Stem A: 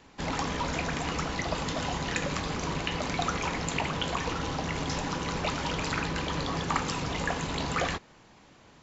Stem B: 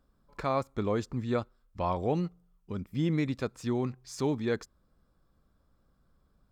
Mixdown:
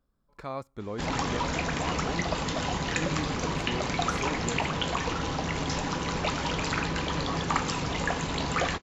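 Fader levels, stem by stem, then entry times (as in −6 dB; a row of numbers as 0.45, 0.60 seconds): +1.5, −6.5 decibels; 0.80, 0.00 seconds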